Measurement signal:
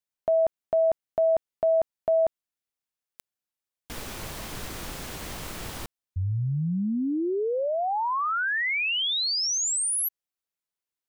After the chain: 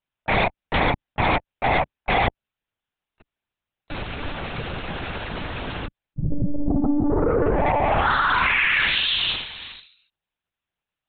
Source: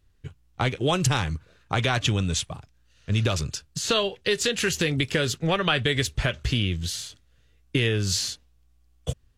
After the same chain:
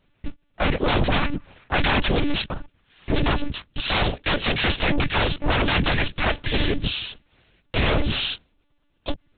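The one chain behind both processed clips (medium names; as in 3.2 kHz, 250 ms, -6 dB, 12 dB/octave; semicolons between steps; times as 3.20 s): noise-vocoded speech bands 8; sine folder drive 15 dB, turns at -8 dBFS; monotone LPC vocoder at 8 kHz 290 Hz; trim -8 dB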